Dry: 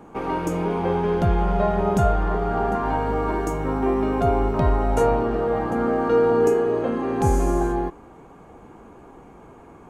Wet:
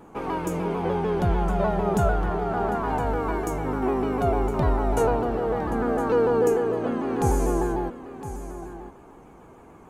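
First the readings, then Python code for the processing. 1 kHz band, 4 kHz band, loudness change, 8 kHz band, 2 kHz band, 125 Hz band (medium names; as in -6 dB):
-2.5 dB, no reading, -2.5 dB, 0.0 dB, -1.5 dB, -2.5 dB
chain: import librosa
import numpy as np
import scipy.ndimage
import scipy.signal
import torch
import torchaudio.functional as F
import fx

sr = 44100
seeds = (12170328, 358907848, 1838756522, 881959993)

y = fx.high_shelf(x, sr, hz=9400.0, db=8.5)
y = y + 10.0 ** (-12.5 / 20.0) * np.pad(y, (int(1011 * sr / 1000.0), 0))[:len(y)]
y = fx.vibrato_shape(y, sr, shape='saw_down', rate_hz=6.7, depth_cents=100.0)
y = y * 10.0 ** (-3.0 / 20.0)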